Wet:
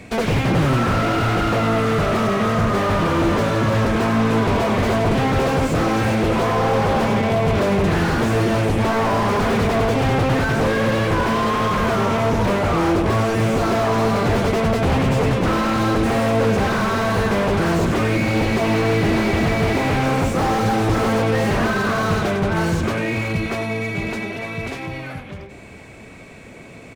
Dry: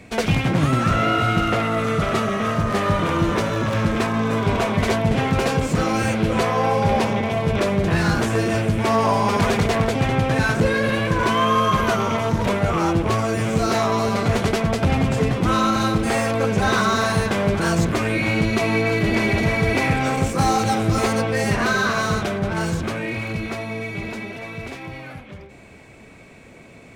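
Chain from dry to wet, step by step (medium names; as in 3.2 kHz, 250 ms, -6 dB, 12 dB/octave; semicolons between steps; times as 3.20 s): wavefolder -16.5 dBFS; on a send: delay 98 ms -12.5 dB; on the sum: slew-rate limiter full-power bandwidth 76 Hz; trim +4.5 dB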